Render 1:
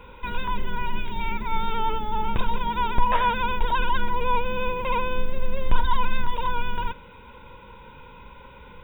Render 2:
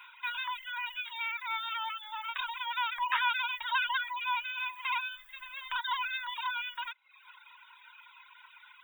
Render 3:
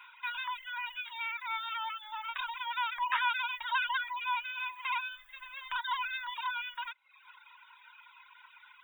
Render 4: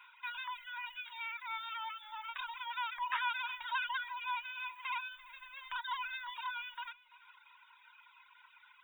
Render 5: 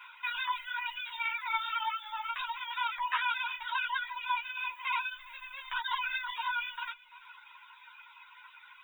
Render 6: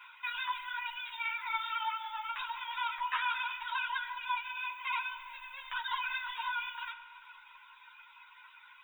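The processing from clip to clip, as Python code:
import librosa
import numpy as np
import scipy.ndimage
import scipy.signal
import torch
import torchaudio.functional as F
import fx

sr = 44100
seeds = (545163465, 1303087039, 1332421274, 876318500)

y1 = fx.dereverb_blind(x, sr, rt60_s=0.73)
y1 = scipy.signal.sosfilt(scipy.signal.cheby2(4, 50, 470.0, 'highpass', fs=sr, output='sos'), y1)
y1 = fx.dereverb_blind(y1, sr, rt60_s=0.86)
y1 = y1 * librosa.db_to_amplitude(2.0)
y2 = fx.high_shelf(y1, sr, hz=3600.0, db=-6.0)
y3 = fx.echo_feedback(y2, sr, ms=339, feedback_pct=31, wet_db=-19.0)
y3 = y3 * librosa.db_to_amplitude(-5.0)
y4 = fx.rider(y3, sr, range_db=3, speed_s=2.0)
y4 = fx.ensemble(y4, sr)
y4 = y4 * librosa.db_to_amplitude(8.5)
y5 = fx.echo_bbd(y4, sr, ms=179, stages=1024, feedback_pct=75, wet_db=-10.0)
y5 = fx.rev_spring(y5, sr, rt60_s=1.7, pass_ms=(39,), chirp_ms=35, drr_db=10.0)
y5 = y5 * librosa.db_to_amplitude(-2.5)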